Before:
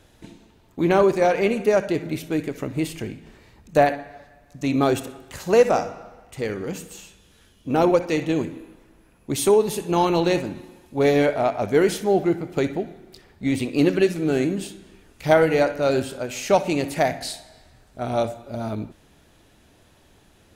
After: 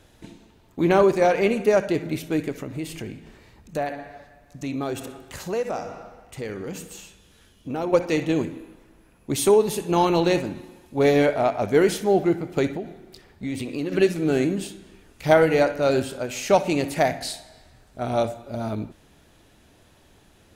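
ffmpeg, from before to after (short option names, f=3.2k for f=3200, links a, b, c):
-filter_complex "[0:a]asettb=1/sr,asplit=3[a][b][c];[a]atrim=end=2.554[d];[b]atrim=start=2.55:end=7.93,asetpts=PTS-STARTPTS,afade=t=in:d=0.004:c=qsin,afade=t=out:st=5.376:d=0.004:c=qsin,acompressor=threshold=-31dB:ratio=2:attack=3.2:release=140:knee=1:detection=peak[e];[c]atrim=start=7.926[f];[d][e]acrossfade=d=0.004:c1=hsin:c2=qsin[g];[g][f]acrossfade=d=0.004:c1=qsin:c2=hsin,asettb=1/sr,asplit=3[h][i][j];[h]atrim=end=12.764[k];[i]atrim=start=12.76:end=13.92,asetpts=PTS-STARTPTS,afade=t=in:d=0.004:c=qsin,afade=t=out:st=1.156:d=0.004:c=qsin,acompressor=threshold=-27dB:ratio=3:attack=3.2:release=140:knee=1:detection=peak[l];[j]atrim=start=13.916[m];[k][l]acrossfade=d=0.004:c1=hsin:c2=qsin[n];[n][m]acrossfade=d=0.004:c1=qsin:c2=hsin"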